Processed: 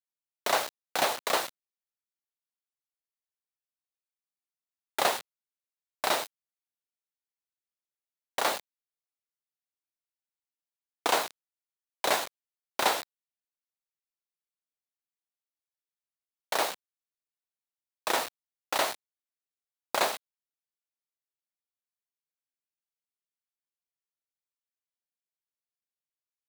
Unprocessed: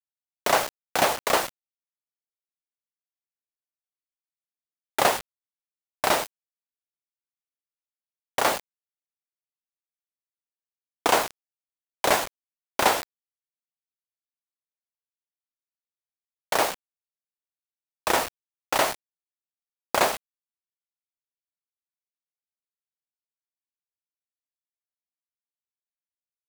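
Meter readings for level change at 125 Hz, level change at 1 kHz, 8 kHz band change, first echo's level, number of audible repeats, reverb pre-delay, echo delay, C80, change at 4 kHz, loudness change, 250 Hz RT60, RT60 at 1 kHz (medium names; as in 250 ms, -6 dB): -12.5 dB, -5.5 dB, -5.0 dB, no echo, no echo, no reverb, no echo, no reverb, -2.5 dB, -5.0 dB, no reverb, no reverb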